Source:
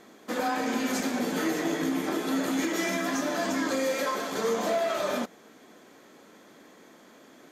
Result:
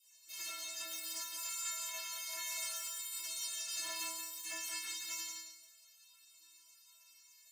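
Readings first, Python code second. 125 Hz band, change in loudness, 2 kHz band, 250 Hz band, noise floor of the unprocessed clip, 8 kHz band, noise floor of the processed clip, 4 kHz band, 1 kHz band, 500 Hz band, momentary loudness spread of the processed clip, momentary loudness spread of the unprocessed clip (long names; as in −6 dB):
below −35 dB, −11.0 dB, −13.5 dB, −37.5 dB, −54 dBFS, 0.0 dB, −64 dBFS, −4.0 dB, −20.5 dB, −31.5 dB, 10 LU, 2 LU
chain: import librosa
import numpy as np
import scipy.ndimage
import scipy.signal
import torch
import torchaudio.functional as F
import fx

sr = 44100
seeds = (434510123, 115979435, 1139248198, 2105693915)

p1 = x + 10.0 ** (-58.0 / 20.0) * np.sin(2.0 * np.pi * 10000.0 * np.arange(len(x)) / sr)
p2 = fx.notch(p1, sr, hz=3900.0, q=5.1)
p3 = 10.0 ** (-27.0 / 20.0) * np.tanh(p2 / 10.0 ** (-27.0 / 20.0))
p4 = fx.peak_eq(p3, sr, hz=4000.0, db=4.0, octaves=1.7)
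p5 = fx.rev_schroeder(p4, sr, rt60_s=1.1, comb_ms=28, drr_db=0.5)
p6 = fx.spec_gate(p5, sr, threshold_db=-25, keep='weak')
p7 = scipy.signal.sosfilt(scipy.signal.butter(2, 160.0, 'highpass', fs=sr, output='sos'), p6)
p8 = fx.high_shelf(p7, sr, hz=7200.0, db=5.5)
p9 = fx.stiff_resonator(p8, sr, f0_hz=320.0, decay_s=0.62, stiffness=0.008)
p10 = p9 + fx.echo_feedback(p9, sr, ms=175, feedback_pct=18, wet_db=-6.5, dry=0)
y = F.gain(torch.from_numpy(p10), 15.0).numpy()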